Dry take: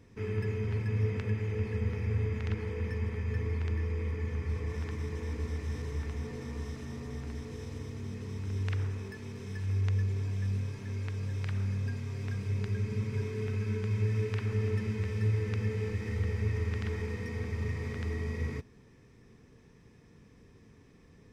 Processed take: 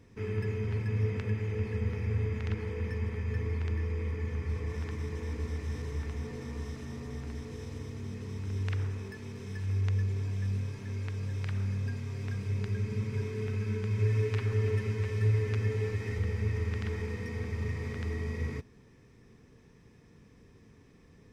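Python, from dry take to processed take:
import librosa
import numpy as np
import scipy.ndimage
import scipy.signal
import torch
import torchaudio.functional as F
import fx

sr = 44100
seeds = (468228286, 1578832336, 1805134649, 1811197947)

y = fx.comb(x, sr, ms=7.4, depth=0.65, at=(13.98, 16.18))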